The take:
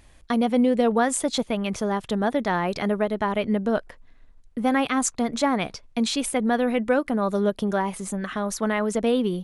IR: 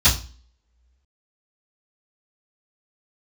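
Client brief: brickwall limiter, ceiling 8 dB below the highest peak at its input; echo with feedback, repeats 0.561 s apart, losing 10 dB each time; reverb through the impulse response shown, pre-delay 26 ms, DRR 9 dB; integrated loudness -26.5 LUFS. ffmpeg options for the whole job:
-filter_complex "[0:a]alimiter=limit=-16.5dB:level=0:latency=1,aecho=1:1:561|1122|1683|2244:0.316|0.101|0.0324|0.0104,asplit=2[a][b];[1:a]atrim=start_sample=2205,adelay=26[c];[b][c]afir=irnorm=-1:irlink=0,volume=-28dB[d];[a][d]amix=inputs=2:normalize=0,volume=-0.5dB"

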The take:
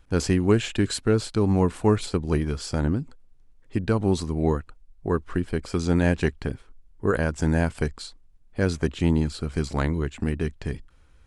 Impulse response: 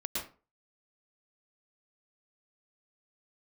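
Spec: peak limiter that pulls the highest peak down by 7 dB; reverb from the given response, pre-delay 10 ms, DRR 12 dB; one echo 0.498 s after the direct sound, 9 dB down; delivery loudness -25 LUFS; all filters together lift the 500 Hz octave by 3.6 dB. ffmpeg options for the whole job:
-filter_complex "[0:a]equalizer=f=500:t=o:g=4.5,alimiter=limit=-12.5dB:level=0:latency=1,aecho=1:1:498:0.355,asplit=2[a][b];[1:a]atrim=start_sample=2205,adelay=10[c];[b][c]afir=irnorm=-1:irlink=0,volume=-15.5dB[d];[a][d]amix=inputs=2:normalize=0,volume=0.5dB"

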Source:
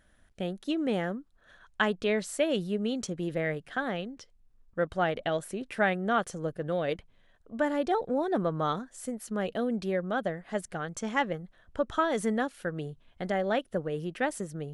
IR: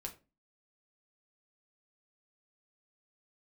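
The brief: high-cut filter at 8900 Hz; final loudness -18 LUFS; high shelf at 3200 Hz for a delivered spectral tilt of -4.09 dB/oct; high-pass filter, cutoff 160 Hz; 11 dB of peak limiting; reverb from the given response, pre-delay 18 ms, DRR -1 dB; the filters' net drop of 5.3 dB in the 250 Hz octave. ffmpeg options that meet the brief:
-filter_complex "[0:a]highpass=160,lowpass=8.9k,equalizer=f=250:t=o:g=-6,highshelf=f=3.2k:g=7,alimiter=limit=-20.5dB:level=0:latency=1,asplit=2[a][b];[1:a]atrim=start_sample=2205,adelay=18[c];[b][c]afir=irnorm=-1:irlink=0,volume=3.5dB[d];[a][d]amix=inputs=2:normalize=0,volume=12dB"

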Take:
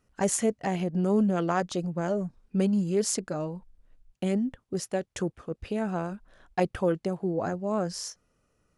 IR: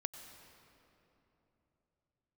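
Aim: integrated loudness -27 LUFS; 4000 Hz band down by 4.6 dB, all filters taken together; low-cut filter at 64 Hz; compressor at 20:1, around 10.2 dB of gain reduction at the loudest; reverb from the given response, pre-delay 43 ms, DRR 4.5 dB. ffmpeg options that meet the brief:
-filter_complex "[0:a]highpass=64,equalizer=f=4k:t=o:g=-7,acompressor=threshold=-30dB:ratio=20,asplit=2[a][b];[1:a]atrim=start_sample=2205,adelay=43[c];[b][c]afir=irnorm=-1:irlink=0,volume=-3dB[d];[a][d]amix=inputs=2:normalize=0,volume=8dB"

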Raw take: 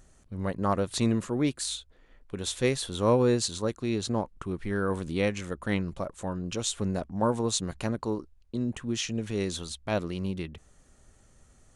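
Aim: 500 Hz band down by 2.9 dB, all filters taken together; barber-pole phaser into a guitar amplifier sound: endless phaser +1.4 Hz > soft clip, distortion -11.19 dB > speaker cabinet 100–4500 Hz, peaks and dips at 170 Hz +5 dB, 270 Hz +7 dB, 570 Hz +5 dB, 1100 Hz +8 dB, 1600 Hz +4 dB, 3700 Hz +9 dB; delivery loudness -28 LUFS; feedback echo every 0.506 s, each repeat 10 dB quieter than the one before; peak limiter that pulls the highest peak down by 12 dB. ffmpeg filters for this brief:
-filter_complex "[0:a]equalizer=f=500:t=o:g=-7,alimiter=limit=-23.5dB:level=0:latency=1,aecho=1:1:506|1012|1518|2024:0.316|0.101|0.0324|0.0104,asplit=2[a][b];[b]afreqshift=1.4[c];[a][c]amix=inputs=2:normalize=1,asoftclip=threshold=-35.5dB,highpass=100,equalizer=f=170:t=q:w=4:g=5,equalizer=f=270:t=q:w=4:g=7,equalizer=f=570:t=q:w=4:g=5,equalizer=f=1.1k:t=q:w=4:g=8,equalizer=f=1.6k:t=q:w=4:g=4,equalizer=f=3.7k:t=q:w=4:g=9,lowpass=f=4.5k:w=0.5412,lowpass=f=4.5k:w=1.3066,volume=10.5dB"

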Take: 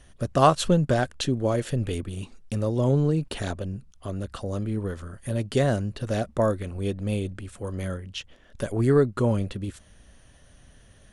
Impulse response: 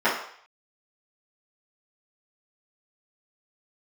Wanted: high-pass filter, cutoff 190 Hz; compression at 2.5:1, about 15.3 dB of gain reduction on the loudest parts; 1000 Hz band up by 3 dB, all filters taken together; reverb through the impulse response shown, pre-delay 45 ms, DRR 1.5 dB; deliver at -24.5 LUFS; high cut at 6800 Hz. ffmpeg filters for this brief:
-filter_complex "[0:a]highpass=190,lowpass=6.8k,equalizer=f=1k:t=o:g=4,acompressor=threshold=-33dB:ratio=2.5,asplit=2[a][b];[1:a]atrim=start_sample=2205,adelay=45[c];[b][c]afir=irnorm=-1:irlink=0,volume=-20dB[d];[a][d]amix=inputs=2:normalize=0,volume=9.5dB"

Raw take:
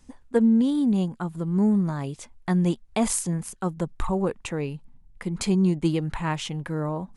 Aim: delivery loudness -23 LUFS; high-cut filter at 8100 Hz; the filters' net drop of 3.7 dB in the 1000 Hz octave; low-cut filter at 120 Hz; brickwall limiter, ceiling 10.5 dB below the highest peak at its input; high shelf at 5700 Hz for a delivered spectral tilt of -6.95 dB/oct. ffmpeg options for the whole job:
-af "highpass=120,lowpass=8.1k,equalizer=f=1k:t=o:g=-4.5,highshelf=f=5.7k:g=-6.5,volume=8dB,alimiter=limit=-14dB:level=0:latency=1"

